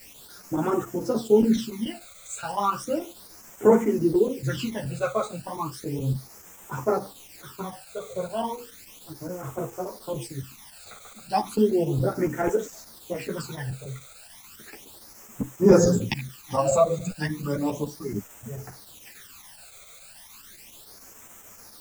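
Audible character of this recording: a quantiser's noise floor 8-bit, dither triangular; phasing stages 12, 0.34 Hz, lowest notch 290–4300 Hz; chopped level 7 Hz, duty 90%; a shimmering, thickened sound

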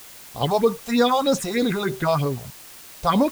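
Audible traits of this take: phasing stages 4, 3.2 Hz, lowest notch 270–2600 Hz; a quantiser's noise floor 8-bit, dither triangular

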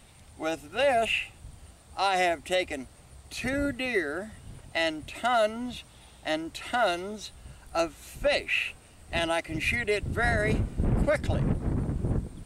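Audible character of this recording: noise floor -54 dBFS; spectral tilt -3.5 dB/oct

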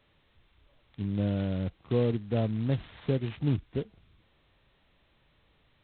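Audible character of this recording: a buzz of ramps at a fixed pitch in blocks of 8 samples; G.726

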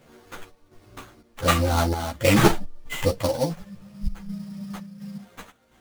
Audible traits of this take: chopped level 1.4 Hz, depth 60%, duty 70%; aliases and images of a low sample rate 5100 Hz, jitter 20%; a shimmering, thickened sound

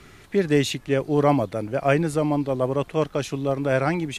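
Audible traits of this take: noise floor -49 dBFS; spectral tilt -6.0 dB/oct

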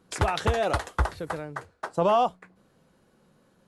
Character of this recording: noise floor -65 dBFS; spectral tilt -4.5 dB/oct

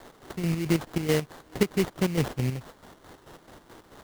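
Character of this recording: a quantiser's noise floor 8-bit, dither triangular; chopped level 4.6 Hz, depth 60%, duty 50%; aliases and images of a low sample rate 2500 Hz, jitter 20%

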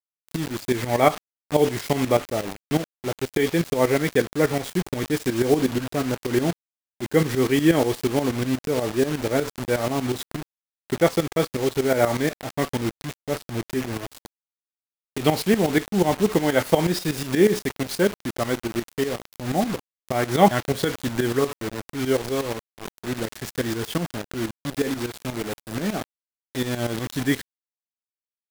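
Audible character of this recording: a quantiser's noise floor 6-bit, dither none; tremolo saw up 8.3 Hz, depth 75%

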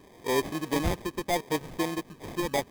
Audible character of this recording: phasing stages 12, 0.75 Hz, lowest notch 660–1500 Hz; aliases and images of a low sample rate 1400 Hz, jitter 0%; AAC

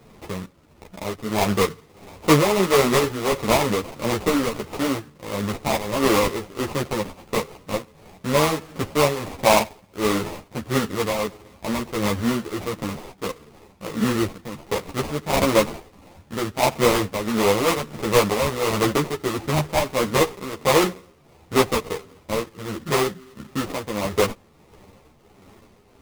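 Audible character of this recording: aliases and images of a low sample rate 1600 Hz, jitter 20%; tremolo triangle 1.5 Hz, depth 65%; a shimmering, thickened sound

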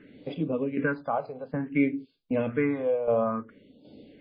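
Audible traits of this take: tremolo saw down 1.3 Hz, depth 70%; phasing stages 4, 0.58 Hz, lowest notch 280–1800 Hz; MP3

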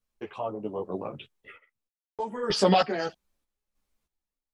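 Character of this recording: random-step tremolo 3.2 Hz, depth 100%; a shimmering, thickened sound

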